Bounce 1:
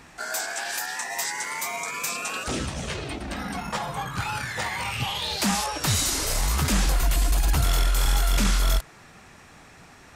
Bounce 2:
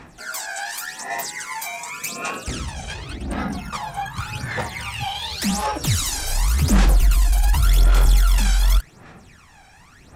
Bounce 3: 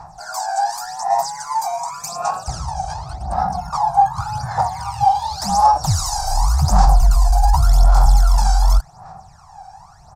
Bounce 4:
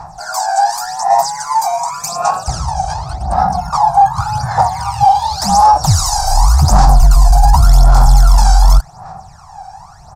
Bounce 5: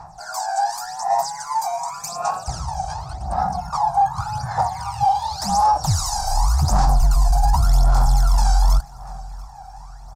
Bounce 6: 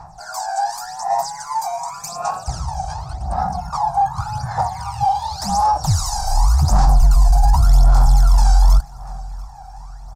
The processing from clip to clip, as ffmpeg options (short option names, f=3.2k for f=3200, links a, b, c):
-af "aphaser=in_gain=1:out_gain=1:delay=1.3:decay=0.72:speed=0.88:type=sinusoidal,volume=-3dB"
-af "firequalizer=gain_entry='entry(160,0);entry(240,-20);entry(490,-12);entry(750,14);entry(1100,3);entry(2000,-17);entry(3100,-20);entry(4800,1);entry(11000,-9)':delay=0.05:min_phase=1,volume=3dB"
-af "apsyclip=9dB,volume=-2dB"
-af "aecho=1:1:691|1382|2073|2764:0.0708|0.0375|0.0199|0.0105,volume=-8.5dB"
-af "lowshelf=f=140:g=4.5"